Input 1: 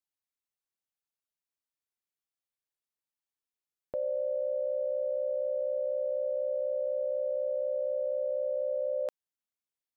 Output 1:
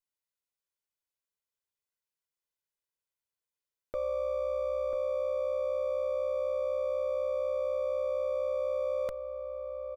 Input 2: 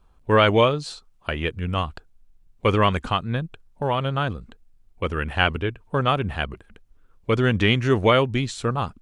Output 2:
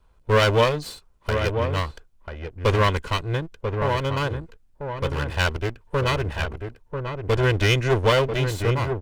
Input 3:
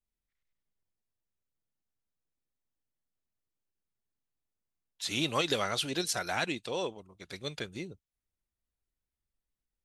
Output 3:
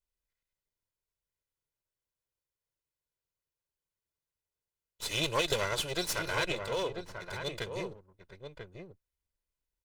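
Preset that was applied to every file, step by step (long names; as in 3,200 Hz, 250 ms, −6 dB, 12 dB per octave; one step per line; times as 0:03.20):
lower of the sound and its delayed copy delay 2 ms
slap from a distant wall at 170 metres, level −6 dB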